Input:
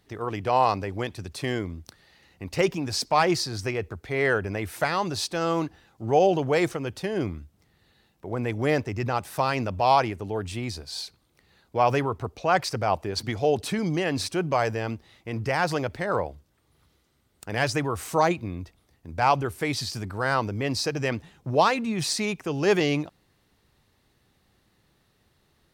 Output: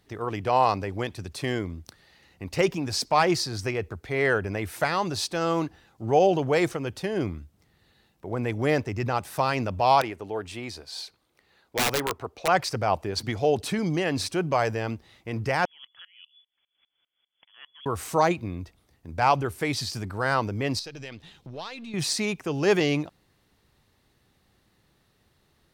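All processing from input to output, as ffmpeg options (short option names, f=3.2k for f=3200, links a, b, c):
-filter_complex "[0:a]asettb=1/sr,asplit=3[a][b][c];[a]atrim=end=10.014[d];[b]atrim=start=10.01:end=12.48,asetpts=PTS-STARTPTS,afade=t=in:d=0.004:c=qsin,afade=t=out:st=2.466:d=0.004:c=qsin,bass=f=250:g=-10,treble=f=4k:g=-4,aeval=exprs='(mod(7.5*val(0)+1,2)-1)/7.5':c=same[e];[c]atrim=start=12.476[f];[d][e]acrossfade=d=0.004:c1=hsin:c2=qsin[g];[g][f]acrossfade=d=0.004:c1=qsin:c2=hsin,asettb=1/sr,asplit=3[h][i][j];[h]atrim=end=15.654[k];[i]atrim=start=15.65:end=17.86,asetpts=PTS-STARTPTS,afade=t=in:d=0.004:c=qsin,afade=t=out:st=2.206:d=0.004:c=qsin,acompressor=threshold=-38dB:ratio=16:attack=3.2:release=140:knee=1:detection=peak,lowpass=f=3k:t=q:w=0.5098,lowpass=f=3k:t=q:w=0.6013,lowpass=f=3k:t=q:w=0.9,lowpass=f=3k:t=q:w=2.563,afreqshift=-3500,aeval=exprs='val(0)*pow(10,-25*if(lt(mod(-5*n/s,1),2*abs(-5)/1000),1-mod(-5*n/s,1)/(2*abs(-5)/1000),(mod(-5*n/s,1)-2*abs(-5)/1000)/(1-2*abs(-5)/1000))/20)':c=same[l];[j]atrim=start=17.856[m];[k][l]acrossfade=d=0.004:c1=hsin:c2=qsin[n];[n][m]acrossfade=d=0.004:c1=qsin:c2=hsin,asettb=1/sr,asplit=3[o][p][q];[o]atrim=end=20.794[r];[p]atrim=start=20.79:end=21.94,asetpts=PTS-STARTPTS,afade=t=in:d=0.004:c=qsin,afade=t=out:st=1.146:d=0.004:c=qsin,aeval=exprs='if(lt(val(0),0),0.708*val(0),val(0))':c=same,equalizer=f=3.7k:w=1.3:g=12,acompressor=threshold=-42dB:ratio=2.5:attack=3.2:release=140:knee=1:detection=peak[s];[q]atrim=start=21.936[t];[r][s]acrossfade=d=0.004:c1=hsin:c2=qsin[u];[u][t]acrossfade=d=0.004:c1=qsin:c2=hsin"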